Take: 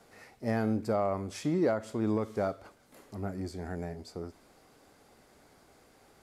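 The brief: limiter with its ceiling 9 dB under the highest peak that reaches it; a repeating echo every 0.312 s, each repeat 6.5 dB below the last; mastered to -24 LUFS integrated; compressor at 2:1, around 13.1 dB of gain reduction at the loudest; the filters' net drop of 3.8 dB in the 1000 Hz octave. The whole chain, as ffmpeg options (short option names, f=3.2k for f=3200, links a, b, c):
-af "equalizer=f=1k:t=o:g=-6,acompressor=threshold=-50dB:ratio=2,alimiter=level_in=16.5dB:limit=-24dB:level=0:latency=1,volume=-16.5dB,aecho=1:1:312|624|936|1248|1560|1872:0.473|0.222|0.105|0.0491|0.0231|0.0109,volume=27dB"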